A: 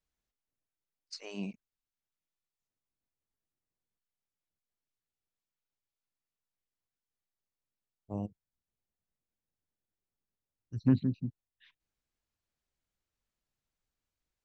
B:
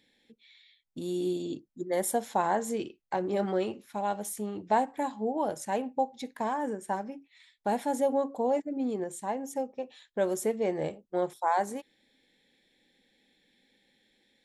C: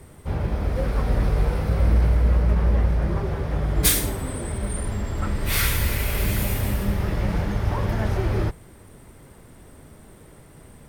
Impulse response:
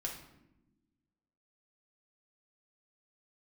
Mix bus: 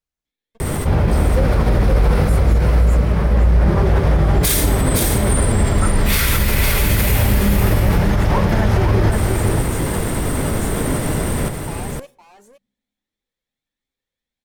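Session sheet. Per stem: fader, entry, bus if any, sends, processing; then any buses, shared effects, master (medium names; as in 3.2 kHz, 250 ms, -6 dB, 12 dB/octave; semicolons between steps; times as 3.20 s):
-1.0 dB, 0.00 s, no send, no echo send, none
-8.0 dB, 0.25 s, send -14 dB, echo send -11 dB, waveshaping leveller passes 5; peak limiter -20.5 dBFS, peak gain reduction 6 dB; Shepard-style flanger rising 1.4 Hz
+3.0 dB, 0.60 s, send -23 dB, echo send -4.5 dB, level flattener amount 70%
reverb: on, RT60 0.95 s, pre-delay 4 ms
echo: delay 513 ms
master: peak limiter -6 dBFS, peak gain reduction 7 dB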